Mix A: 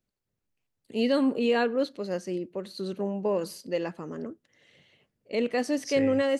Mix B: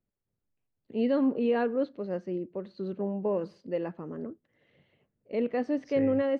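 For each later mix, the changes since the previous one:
master: add head-to-tape spacing loss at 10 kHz 39 dB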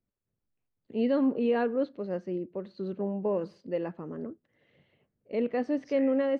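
second voice: add linear-phase brick-wall high-pass 1,000 Hz

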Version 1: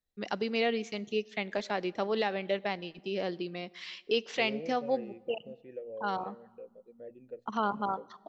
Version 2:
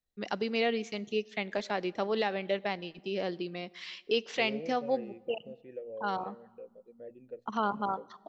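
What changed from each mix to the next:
nothing changed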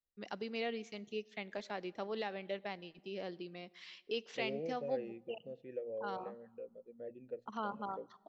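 first voice −9.5 dB

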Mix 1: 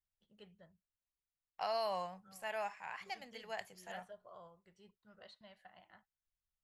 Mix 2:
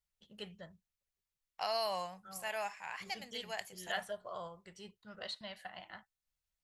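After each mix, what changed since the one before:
first voice +10.5 dB
master: add high-shelf EQ 3,000 Hz +10.5 dB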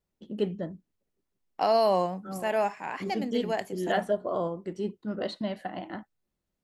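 master: remove guitar amp tone stack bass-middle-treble 10-0-10

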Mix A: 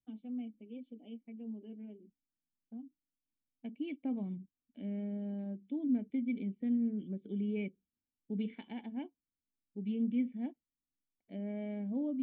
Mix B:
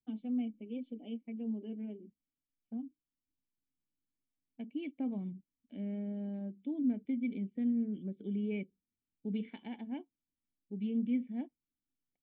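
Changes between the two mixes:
first voice +6.0 dB
second voice: entry +0.95 s

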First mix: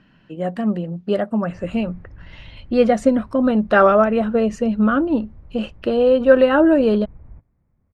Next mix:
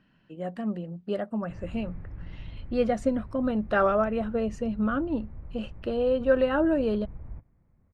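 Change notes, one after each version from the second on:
speech −10.0 dB
reverb: on, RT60 0.50 s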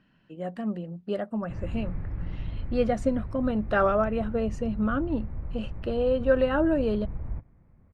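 background +7.0 dB

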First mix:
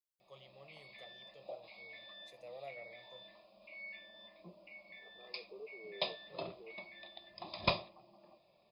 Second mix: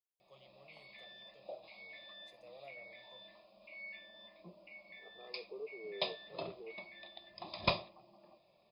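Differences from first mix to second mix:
first voice −5.5 dB
second voice +4.5 dB

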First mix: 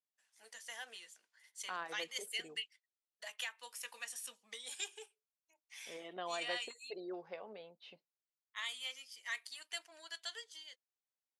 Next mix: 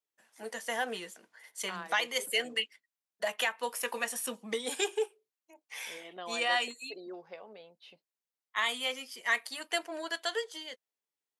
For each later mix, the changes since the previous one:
first voice: remove first difference
master: remove high-frequency loss of the air 75 metres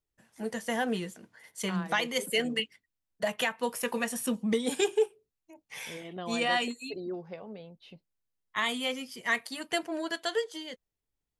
master: remove Bessel high-pass filter 620 Hz, order 2

